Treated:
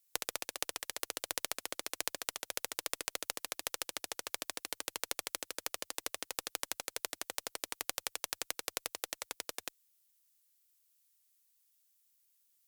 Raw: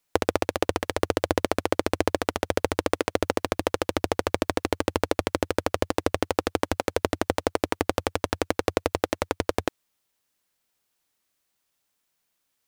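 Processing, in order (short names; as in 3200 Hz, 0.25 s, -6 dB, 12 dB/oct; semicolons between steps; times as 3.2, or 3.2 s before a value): differentiator; added harmonics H 4 -9 dB, 6 -10 dB, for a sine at -8.5 dBFS; gain +1 dB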